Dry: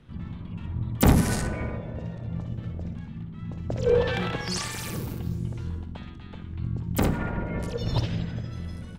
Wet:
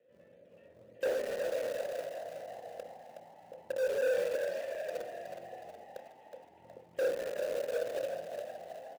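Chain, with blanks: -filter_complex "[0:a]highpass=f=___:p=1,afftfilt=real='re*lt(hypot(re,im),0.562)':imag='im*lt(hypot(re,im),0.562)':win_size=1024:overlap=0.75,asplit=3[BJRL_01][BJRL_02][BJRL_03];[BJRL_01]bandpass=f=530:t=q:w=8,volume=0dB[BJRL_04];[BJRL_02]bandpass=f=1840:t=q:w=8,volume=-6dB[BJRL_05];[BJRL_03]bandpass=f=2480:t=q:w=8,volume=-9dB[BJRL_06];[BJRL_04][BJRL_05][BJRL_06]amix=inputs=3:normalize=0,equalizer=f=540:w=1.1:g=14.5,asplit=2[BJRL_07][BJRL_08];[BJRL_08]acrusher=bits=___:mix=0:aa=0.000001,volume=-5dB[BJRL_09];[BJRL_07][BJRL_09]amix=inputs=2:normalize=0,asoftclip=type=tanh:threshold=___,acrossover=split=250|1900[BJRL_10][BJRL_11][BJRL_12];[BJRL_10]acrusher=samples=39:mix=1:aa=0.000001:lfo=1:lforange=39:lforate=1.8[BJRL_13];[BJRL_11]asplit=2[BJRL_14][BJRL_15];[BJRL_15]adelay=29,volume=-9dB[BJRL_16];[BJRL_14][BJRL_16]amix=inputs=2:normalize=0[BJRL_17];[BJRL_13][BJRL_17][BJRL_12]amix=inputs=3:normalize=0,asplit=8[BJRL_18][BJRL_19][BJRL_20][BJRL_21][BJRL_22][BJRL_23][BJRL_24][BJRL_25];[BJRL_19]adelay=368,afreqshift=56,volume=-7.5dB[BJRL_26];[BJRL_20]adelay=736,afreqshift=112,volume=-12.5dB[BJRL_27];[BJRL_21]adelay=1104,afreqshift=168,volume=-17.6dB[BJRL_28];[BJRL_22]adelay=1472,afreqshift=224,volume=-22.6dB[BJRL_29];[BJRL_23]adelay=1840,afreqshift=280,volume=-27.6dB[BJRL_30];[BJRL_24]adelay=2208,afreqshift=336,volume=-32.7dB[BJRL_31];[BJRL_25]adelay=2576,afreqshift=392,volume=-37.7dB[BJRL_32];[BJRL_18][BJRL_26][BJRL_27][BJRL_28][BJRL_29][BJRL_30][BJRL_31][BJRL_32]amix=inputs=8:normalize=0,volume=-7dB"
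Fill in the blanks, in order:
83, 4, -21dB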